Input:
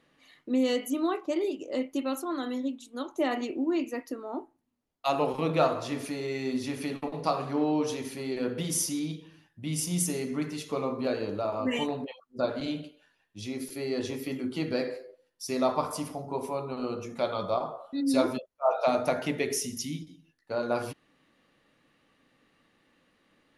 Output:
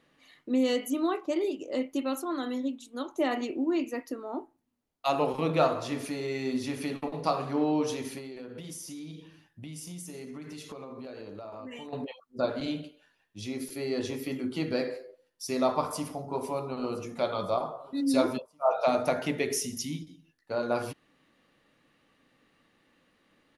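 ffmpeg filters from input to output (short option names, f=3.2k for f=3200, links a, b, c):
-filter_complex "[0:a]asettb=1/sr,asplit=3[a][b][c];[a]atrim=end=8.184[d];[b]atrim=start=8.18:end=11.93,asetpts=PTS-STARTPTS,afade=t=in:d=0.004:c=qsin,afade=t=out:st=3.746:d=0.004:c=qsin,acompressor=threshold=-38dB:ratio=12:attack=3.2:release=140:knee=1:detection=peak[e];[c]atrim=start=11.926[f];[d][e]acrossfade=d=0.004:c1=hsin:c2=qsin[g];[g][f]acrossfade=d=0.004:c1=qsin:c2=hsin,asplit=2[h][i];[i]afade=t=in:st=15.81:d=0.01,afade=t=out:st=16.42:d=0.01,aecho=0:1:510|1020|1530|2040|2550|3060|3570:0.158489|0.103018|0.0669617|0.0435251|0.0282913|0.0183894|0.0119531[j];[h][j]amix=inputs=2:normalize=0"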